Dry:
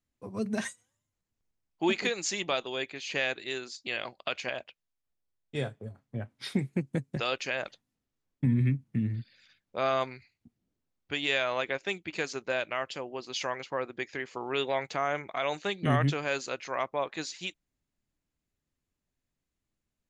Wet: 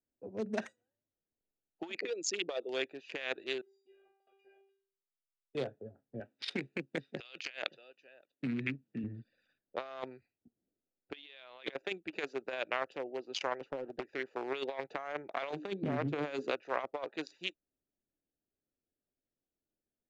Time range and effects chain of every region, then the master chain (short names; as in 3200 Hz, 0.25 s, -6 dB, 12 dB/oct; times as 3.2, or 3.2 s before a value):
1.95–2.69 formant sharpening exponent 2 + bell 1200 Hz -3.5 dB 1.5 oct + mismatched tape noise reduction decoder only
3.61–5.55 compressor 2:1, threshold -39 dBFS + metallic resonator 390 Hz, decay 0.57 s, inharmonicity 0.002
6.2–9.04 weighting filter D + echo 0.571 s -22.5 dB
11.14–11.74 resonant high shelf 5300 Hz -12.5 dB, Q 3 + fast leveller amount 100%
13.61–14.12 compressor 12:1, threshold -32 dBFS + low shelf 280 Hz +5.5 dB + Doppler distortion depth 0.84 ms
15.5–16.51 bell 190 Hz +12.5 dB 2.7 oct + compressor 12:1, threshold -22 dBFS + notches 60/120/180/240/300/360/420/480 Hz
whole clip: Wiener smoothing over 41 samples; three-band isolator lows -17 dB, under 300 Hz, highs -21 dB, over 7900 Hz; negative-ratio compressor -35 dBFS, ratio -0.5; gain -1.5 dB